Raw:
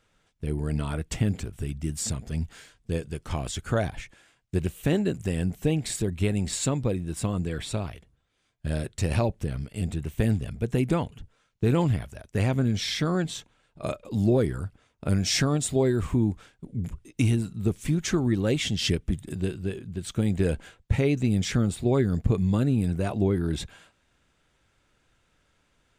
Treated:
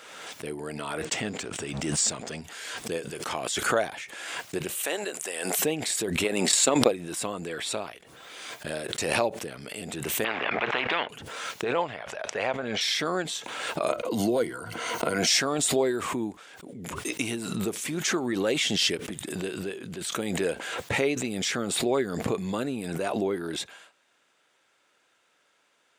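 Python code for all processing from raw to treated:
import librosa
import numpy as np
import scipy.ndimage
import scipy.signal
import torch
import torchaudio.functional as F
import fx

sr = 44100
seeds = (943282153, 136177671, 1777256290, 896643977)

y = fx.chain(x, sr, fx.steep_lowpass(hz=8800.0, slope=48),
    fx.leveller(passes=1), at=(1.02, 2.41))
y = fx.chain(y, sr, fx.highpass(hz=540.0, slope=12),
    fx.peak_eq(hz=9200.0, db=6.0, octaves=0.67), at=(4.75, 5.59))
y = fx.chain(y, sr, fx.highpass(hz=200.0, slope=12),
    fx.transient(attack_db=12, sustain_db=-6), at=(6.24, 6.91))
y = fx.chain(y, sr, fx.block_float(bits=7),
    fx.lowpass(hz=2400.0, slope=24),
    fx.spectral_comp(ratio=4.0), at=(10.24, 11.09))
y = fx.chain(y, sr, fx.lowpass(hz=3400.0, slope=12),
    fx.low_shelf_res(hz=430.0, db=-7.0, q=1.5), at=(11.64, 12.81))
y = fx.chain(y, sr, fx.ripple_eq(per_octave=1.9, db=9),
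    fx.band_squash(depth_pct=70), at=(13.9, 15.27))
y = scipy.signal.sosfilt(scipy.signal.butter(2, 440.0, 'highpass', fs=sr, output='sos'), y)
y = fx.pre_swell(y, sr, db_per_s=33.0)
y = F.gain(torch.from_numpy(y), 3.0).numpy()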